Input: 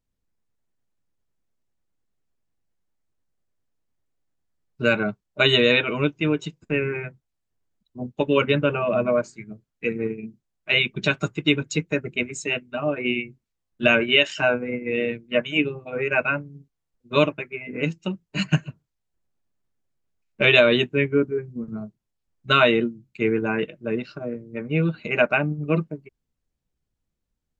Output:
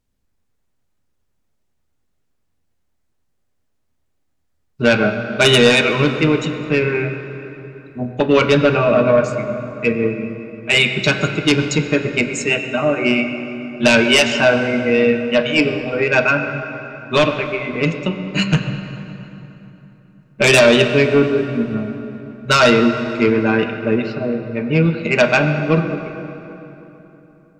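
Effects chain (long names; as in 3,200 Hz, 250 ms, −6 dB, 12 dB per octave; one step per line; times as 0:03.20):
sine wavefolder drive 8 dB, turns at −3 dBFS
on a send: convolution reverb RT60 3.3 s, pre-delay 6 ms, DRR 5 dB
on the sum: level −4 dB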